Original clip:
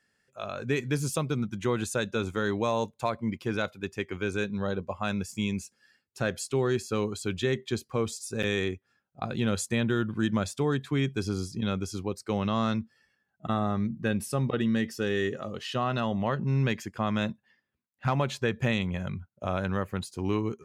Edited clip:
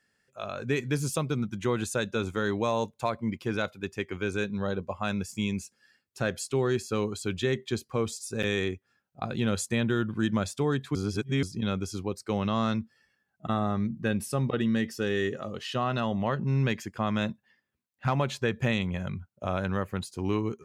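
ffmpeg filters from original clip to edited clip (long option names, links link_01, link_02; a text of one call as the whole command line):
ffmpeg -i in.wav -filter_complex "[0:a]asplit=3[link_01][link_02][link_03];[link_01]atrim=end=10.952[link_04];[link_02]atrim=start=10.948:end=11.432,asetpts=PTS-STARTPTS,areverse[link_05];[link_03]atrim=start=11.428[link_06];[link_04][link_05]acrossfade=duration=0.004:curve1=hsin:curve2=hsin[link_07];[link_07][link_06]acrossfade=duration=0.004:curve1=hsin:curve2=hsin" out.wav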